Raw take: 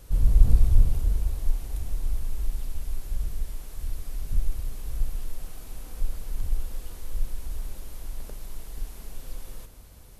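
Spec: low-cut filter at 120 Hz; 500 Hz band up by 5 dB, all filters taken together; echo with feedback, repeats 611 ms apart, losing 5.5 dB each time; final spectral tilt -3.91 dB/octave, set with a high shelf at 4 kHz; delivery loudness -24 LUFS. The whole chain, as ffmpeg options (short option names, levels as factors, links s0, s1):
-af "highpass=120,equalizer=f=500:t=o:g=6,highshelf=f=4000:g=3.5,aecho=1:1:611|1222|1833|2444|3055|3666|4277:0.531|0.281|0.149|0.079|0.0419|0.0222|0.0118,volume=6.31"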